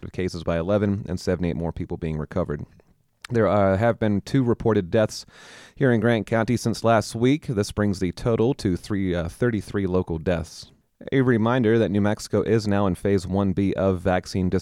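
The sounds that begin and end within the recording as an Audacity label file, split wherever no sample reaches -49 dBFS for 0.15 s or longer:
3.220000	10.740000	sound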